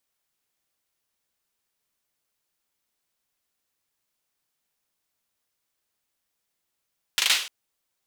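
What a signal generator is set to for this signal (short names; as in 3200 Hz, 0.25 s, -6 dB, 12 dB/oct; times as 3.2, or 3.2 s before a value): hand clap length 0.30 s, apart 39 ms, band 3000 Hz, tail 0.46 s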